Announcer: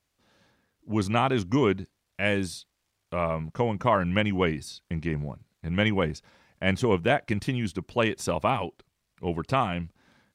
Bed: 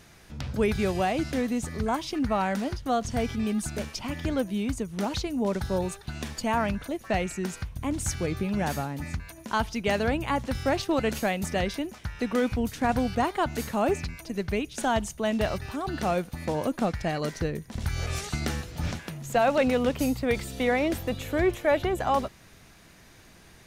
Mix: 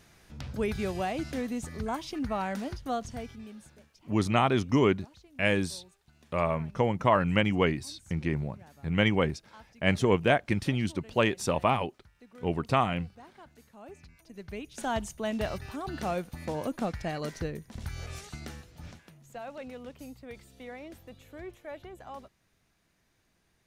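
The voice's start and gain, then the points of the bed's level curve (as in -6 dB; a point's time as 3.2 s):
3.20 s, -0.5 dB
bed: 2.94 s -5.5 dB
3.85 s -26 dB
13.69 s -26 dB
14.93 s -5 dB
17.45 s -5 dB
19.39 s -19 dB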